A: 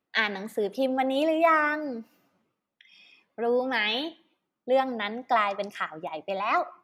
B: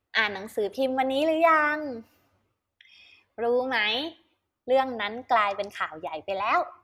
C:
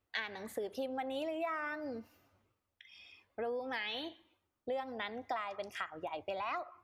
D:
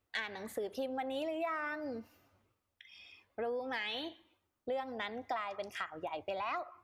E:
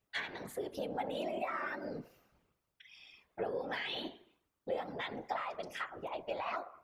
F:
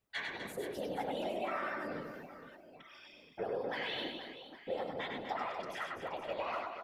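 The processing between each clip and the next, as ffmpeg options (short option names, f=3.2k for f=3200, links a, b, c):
-af "lowshelf=f=120:t=q:w=3:g=12.5,volume=1.5dB"
-af "acompressor=threshold=-33dB:ratio=5,volume=-3.5dB"
-af "asoftclip=type=tanh:threshold=-23.5dB,volume=1dB"
-af "bandreject=f=68.35:t=h:w=4,bandreject=f=136.7:t=h:w=4,bandreject=f=205.05:t=h:w=4,bandreject=f=273.4:t=h:w=4,bandreject=f=341.75:t=h:w=4,bandreject=f=410.1:t=h:w=4,bandreject=f=478.45:t=h:w=4,bandreject=f=546.8:t=h:w=4,bandreject=f=615.15:t=h:w=4,bandreject=f=683.5:t=h:w=4,bandreject=f=751.85:t=h:w=4,bandreject=f=820.2:t=h:w=4,bandreject=f=888.55:t=h:w=4,bandreject=f=956.9:t=h:w=4,bandreject=f=1.02525k:t=h:w=4,bandreject=f=1.0936k:t=h:w=4,bandreject=f=1.16195k:t=h:w=4,bandreject=f=1.2303k:t=h:w=4,bandreject=f=1.29865k:t=h:w=4,bandreject=f=1.367k:t=h:w=4,bandreject=f=1.43535k:t=h:w=4,bandreject=f=1.5037k:t=h:w=4,bandreject=f=1.57205k:t=h:w=4,bandreject=f=1.6404k:t=h:w=4,afftfilt=real='hypot(re,im)*cos(2*PI*random(0))':imag='hypot(re,im)*sin(2*PI*random(1))':win_size=512:overlap=0.75,volume=5.5dB"
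-af "aecho=1:1:100|250|475|812.5|1319:0.631|0.398|0.251|0.158|0.1,volume=-1.5dB"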